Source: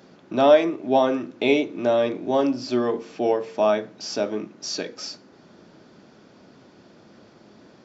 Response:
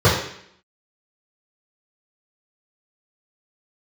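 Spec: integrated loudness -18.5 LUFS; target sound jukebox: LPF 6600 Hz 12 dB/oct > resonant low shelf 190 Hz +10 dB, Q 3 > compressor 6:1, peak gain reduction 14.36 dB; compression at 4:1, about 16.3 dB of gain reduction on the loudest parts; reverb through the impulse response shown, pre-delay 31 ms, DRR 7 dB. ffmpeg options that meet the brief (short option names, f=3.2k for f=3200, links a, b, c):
-filter_complex "[0:a]acompressor=threshold=-30dB:ratio=4,asplit=2[a][b];[1:a]atrim=start_sample=2205,adelay=31[c];[b][c]afir=irnorm=-1:irlink=0,volume=-31dB[d];[a][d]amix=inputs=2:normalize=0,lowpass=6.6k,lowshelf=f=190:t=q:w=3:g=10,acompressor=threshold=-36dB:ratio=6,volume=22dB"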